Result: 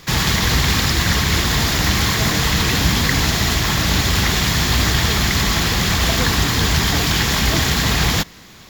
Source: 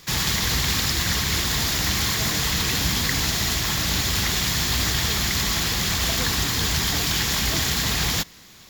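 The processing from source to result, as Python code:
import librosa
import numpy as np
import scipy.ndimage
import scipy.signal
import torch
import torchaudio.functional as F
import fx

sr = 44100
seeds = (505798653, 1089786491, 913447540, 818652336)

y = fx.high_shelf(x, sr, hz=3300.0, db=-8.0)
y = y * librosa.db_to_amplitude(8.5)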